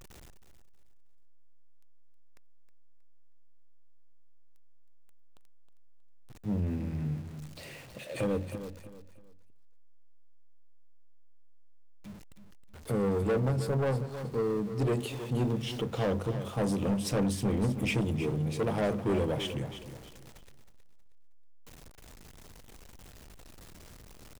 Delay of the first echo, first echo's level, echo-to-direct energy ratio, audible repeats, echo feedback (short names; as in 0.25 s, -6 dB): 0.317 s, -11.0 dB, -10.5 dB, 3, 30%